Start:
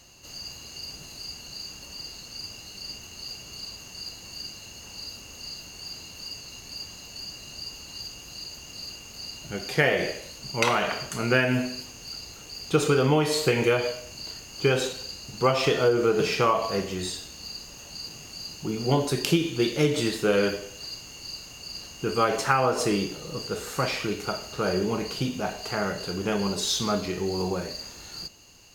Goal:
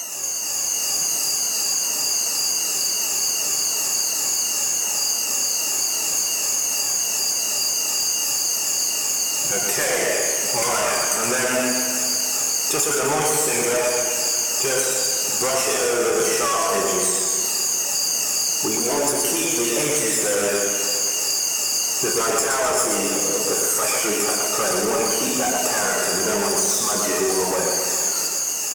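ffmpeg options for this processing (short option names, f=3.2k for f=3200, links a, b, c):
-filter_complex "[0:a]afftfilt=real='re*pow(10,14/40*sin(2*PI*(1.9*log(max(b,1)*sr/1024/100)/log(2)-(-2.7)*(pts-256)/sr)))':imag='im*pow(10,14/40*sin(2*PI*(1.9*log(max(b,1)*sr/1024/100)/log(2)-(-2.7)*(pts-256)/sr)))':win_size=1024:overlap=0.75,asplit=2[a][b];[b]highpass=f=720:p=1,volume=28dB,asoftclip=type=tanh:threshold=-3dB[c];[a][c]amix=inputs=2:normalize=0,lowpass=f=1.1k:p=1,volume=-6dB,highpass=f=290:p=1,asoftclip=type=tanh:threshold=-13.5dB,aexciter=amount=15.1:drive=9.3:freq=6.3k,highshelf=f=10k:g=-11,acompressor=threshold=-27dB:ratio=5,asplit=2[d][e];[e]aecho=0:1:120|258|416.7|599.2|809.1:0.631|0.398|0.251|0.158|0.1[f];[d][f]amix=inputs=2:normalize=0,dynaudnorm=f=430:g=3:m=3.5dB,volume=1.5dB"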